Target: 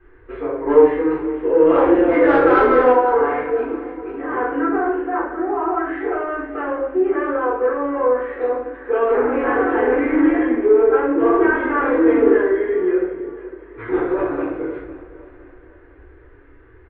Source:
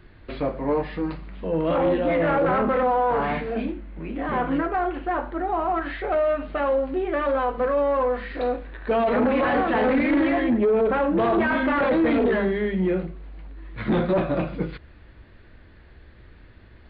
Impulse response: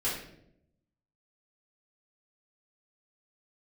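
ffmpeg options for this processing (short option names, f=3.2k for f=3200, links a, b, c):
-filter_complex "[0:a]firequalizer=gain_entry='entry(120,0);entry(190,-25);entry(290,8);entry(410,12);entry(590,0);entry(960,8);entry(1500,8);entry(5300,-28)':delay=0.05:min_phase=1,asettb=1/sr,asplit=3[a][b][c];[a]atrim=end=0.664[d];[b]atrim=start=0.66:end=2.92,asetpts=PTS-STARTPTS,afade=t=in:d=0.004:c=qsin,afade=t=out:st=2.256:d=0.004:c=qsin,acontrast=53[e];[c]atrim=start=2.916[f];[d][e]acrossfade=d=0.004:c1=hsin:c2=qsin[g];[g][f]acrossfade=d=0.004:c1=qsin:c2=hsin,aecho=1:1:508|1016|1524|2032:0.141|0.0622|0.0273|0.012[h];[1:a]atrim=start_sample=2205[i];[h][i]afir=irnorm=-1:irlink=0,volume=-10.5dB"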